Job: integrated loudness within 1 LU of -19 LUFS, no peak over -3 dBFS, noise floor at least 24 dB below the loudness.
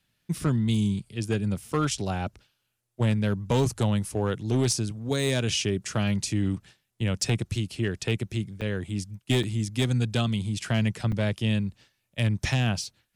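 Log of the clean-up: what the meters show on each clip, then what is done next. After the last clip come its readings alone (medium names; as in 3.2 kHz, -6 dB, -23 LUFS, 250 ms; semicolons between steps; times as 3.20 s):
clipped samples 0.6%; clipping level -17.0 dBFS; dropouts 3; longest dropout 4.5 ms; loudness -27.5 LUFS; peak level -17.0 dBFS; loudness target -19.0 LUFS
-> clip repair -17 dBFS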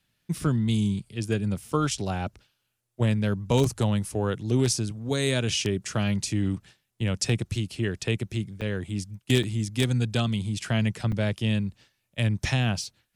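clipped samples 0.0%; dropouts 3; longest dropout 4.5 ms
-> interpolate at 8.61/9.43/11.12 s, 4.5 ms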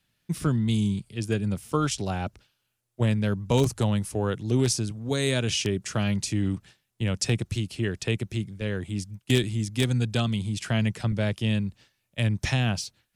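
dropouts 0; loudness -27.0 LUFS; peak level -8.0 dBFS; loudness target -19.0 LUFS
-> trim +8 dB; peak limiter -3 dBFS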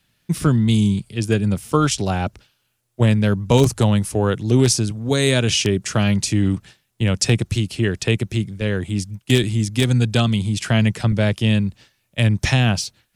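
loudness -19.5 LUFS; peak level -3.0 dBFS; noise floor -69 dBFS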